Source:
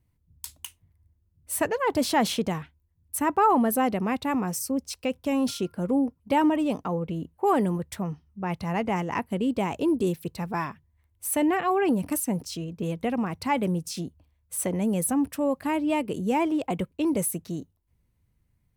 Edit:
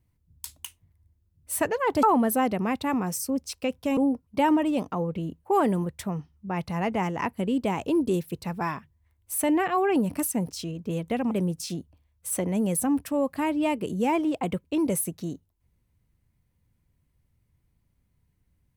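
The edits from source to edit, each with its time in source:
2.03–3.44 cut
5.38–5.9 cut
13.24–13.58 cut

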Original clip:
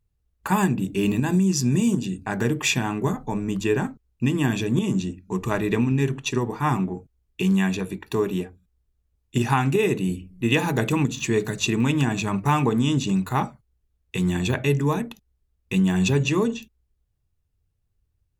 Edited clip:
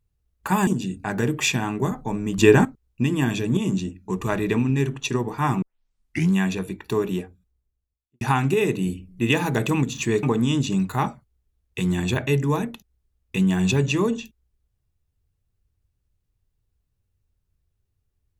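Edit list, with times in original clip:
0.67–1.89 cut
3.6–3.87 gain +8.5 dB
6.84 tape start 0.70 s
8.43–9.43 studio fade out
11.45–12.6 cut

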